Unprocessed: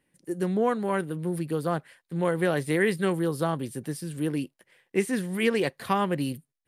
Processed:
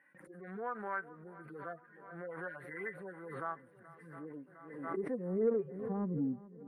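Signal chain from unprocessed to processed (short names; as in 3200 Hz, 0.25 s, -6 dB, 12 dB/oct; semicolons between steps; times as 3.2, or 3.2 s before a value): median-filter separation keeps harmonic; gate with hold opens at -59 dBFS; band-pass sweep 1500 Hz -> 240 Hz, 3.76–6.11; dynamic EQ 350 Hz, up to -7 dB, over -53 dBFS, Q 6.2; in parallel at -4 dB: soft clip -26 dBFS, distortion -15 dB; on the sum: band shelf 4400 Hz -15.5 dB; swung echo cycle 0.708 s, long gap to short 1.5:1, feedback 44%, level -19 dB; backwards sustainer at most 54 dB/s; gain -5.5 dB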